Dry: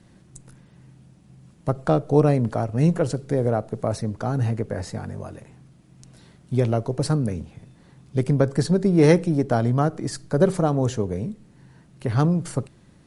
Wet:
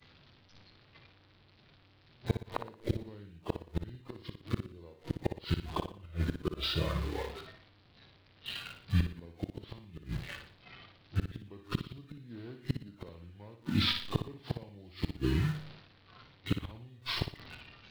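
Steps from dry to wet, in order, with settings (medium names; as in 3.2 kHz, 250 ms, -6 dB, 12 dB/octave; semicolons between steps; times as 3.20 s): one-bit delta coder 32 kbps, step -31 dBFS; spectral noise reduction 11 dB; expander -42 dBFS; treble shelf 2.4 kHz +10.5 dB; tape speed -27%; in parallel at -10 dB: bit crusher 6-bit; on the sum: inverted gate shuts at -13 dBFS, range -30 dB; flutter echo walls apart 10.1 m, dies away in 0.42 s; trim -4 dB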